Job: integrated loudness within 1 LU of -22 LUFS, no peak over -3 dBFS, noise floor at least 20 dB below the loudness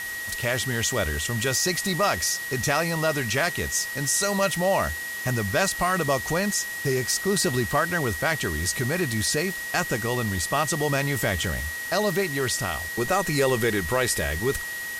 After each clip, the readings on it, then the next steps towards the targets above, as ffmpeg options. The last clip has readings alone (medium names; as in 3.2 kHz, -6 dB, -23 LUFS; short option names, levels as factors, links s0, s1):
steady tone 1.9 kHz; tone level -31 dBFS; noise floor -33 dBFS; noise floor target -45 dBFS; loudness -24.5 LUFS; peak level -9.5 dBFS; loudness target -22.0 LUFS
-> -af "bandreject=f=1900:w=30"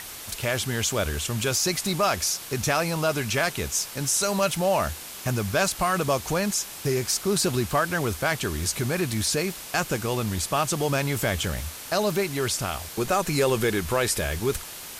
steady tone not found; noise floor -39 dBFS; noise floor target -46 dBFS
-> -af "afftdn=nr=7:nf=-39"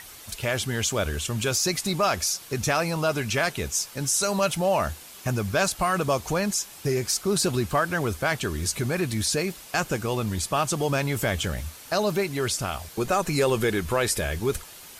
noise floor -45 dBFS; noise floor target -46 dBFS
-> -af "afftdn=nr=6:nf=-45"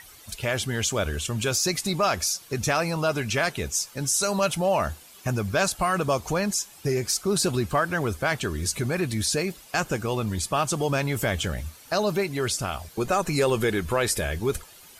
noise floor -49 dBFS; loudness -25.5 LUFS; peak level -11.0 dBFS; loudness target -22.0 LUFS
-> -af "volume=1.5"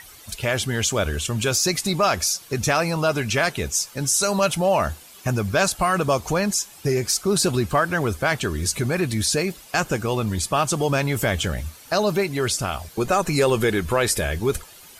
loudness -22.0 LUFS; peak level -7.5 dBFS; noise floor -46 dBFS